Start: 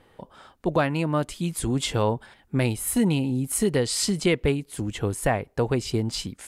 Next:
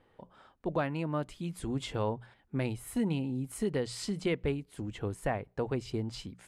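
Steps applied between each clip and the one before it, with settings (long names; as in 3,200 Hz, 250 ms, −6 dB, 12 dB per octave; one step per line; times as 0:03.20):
high-shelf EQ 5,000 Hz −11.5 dB
mains-hum notches 60/120/180 Hz
level −8.5 dB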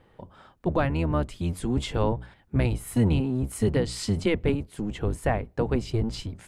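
sub-octave generator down 1 octave, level +1 dB
level +6 dB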